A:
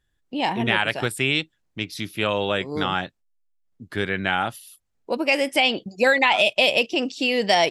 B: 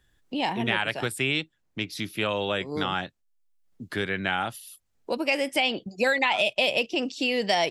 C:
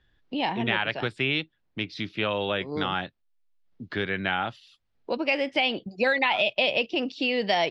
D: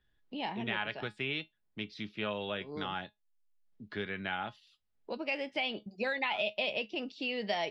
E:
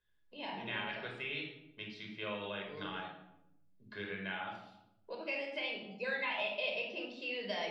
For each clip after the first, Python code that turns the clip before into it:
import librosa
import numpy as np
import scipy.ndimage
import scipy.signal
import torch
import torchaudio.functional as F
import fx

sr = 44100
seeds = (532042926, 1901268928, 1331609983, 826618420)

y1 = fx.band_squash(x, sr, depth_pct=40)
y1 = y1 * 10.0 ** (-4.5 / 20.0)
y2 = scipy.signal.sosfilt(scipy.signal.butter(4, 4500.0, 'lowpass', fs=sr, output='sos'), y1)
y3 = fx.comb_fb(y2, sr, f0_hz=210.0, decay_s=0.16, harmonics='all', damping=0.0, mix_pct=60)
y3 = y3 * 10.0 ** (-4.0 / 20.0)
y4 = fx.low_shelf(y3, sr, hz=270.0, db=-11.0)
y4 = fx.room_shoebox(y4, sr, seeds[0], volume_m3=2500.0, walls='furnished', distance_m=5.2)
y4 = y4 * 10.0 ** (-7.5 / 20.0)